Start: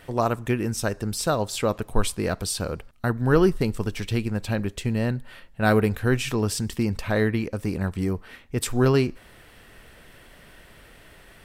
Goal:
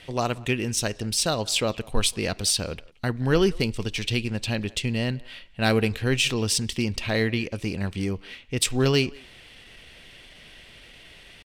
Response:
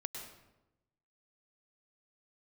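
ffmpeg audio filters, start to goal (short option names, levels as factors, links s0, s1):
-filter_complex "[0:a]acrossover=split=2500[s0][s1];[s1]adynamicsmooth=sensitivity=7:basefreq=6600[s2];[s0][s2]amix=inputs=2:normalize=0,asetrate=45392,aresample=44100,atempo=0.971532,highshelf=f=2000:t=q:w=1.5:g=9.5,asplit=2[s3][s4];[s4]adelay=180,highpass=300,lowpass=3400,asoftclip=type=hard:threshold=0.224,volume=0.0708[s5];[s3][s5]amix=inputs=2:normalize=0,volume=0.794"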